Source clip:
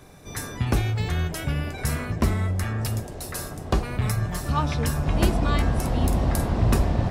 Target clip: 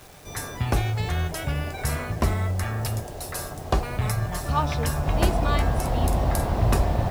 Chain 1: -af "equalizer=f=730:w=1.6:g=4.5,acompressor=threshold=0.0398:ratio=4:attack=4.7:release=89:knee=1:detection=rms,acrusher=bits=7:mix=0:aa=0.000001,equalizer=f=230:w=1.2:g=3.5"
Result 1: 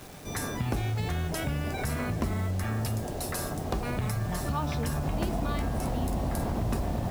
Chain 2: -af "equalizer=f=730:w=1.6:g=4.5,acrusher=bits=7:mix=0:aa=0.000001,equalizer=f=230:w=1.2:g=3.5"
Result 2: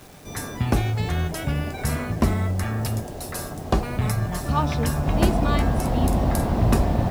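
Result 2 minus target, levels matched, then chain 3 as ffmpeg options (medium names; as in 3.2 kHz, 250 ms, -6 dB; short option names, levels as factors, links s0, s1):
250 Hz band +4.5 dB
-af "equalizer=f=730:w=1.6:g=4.5,acrusher=bits=7:mix=0:aa=0.000001,equalizer=f=230:w=1.2:g=-4.5"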